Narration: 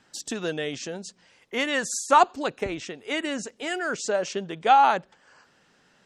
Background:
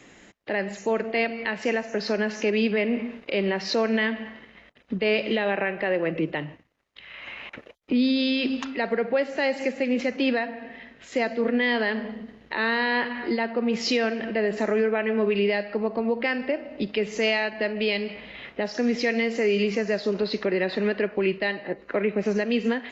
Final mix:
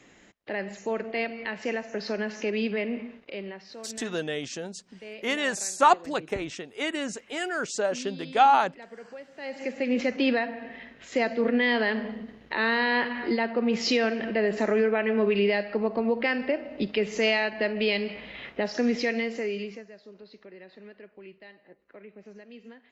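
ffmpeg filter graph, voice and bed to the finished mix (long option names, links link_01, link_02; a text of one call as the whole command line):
ffmpeg -i stem1.wav -i stem2.wav -filter_complex "[0:a]adelay=3700,volume=-1.5dB[link_01];[1:a]volume=14dB,afade=type=out:start_time=2.79:duration=0.9:silence=0.188365,afade=type=in:start_time=9.36:duration=0.63:silence=0.112202,afade=type=out:start_time=18.8:duration=1.08:silence=0.0749894[link_02];[link_01][link_02]amix=inputs=2:normalize=0" out.wav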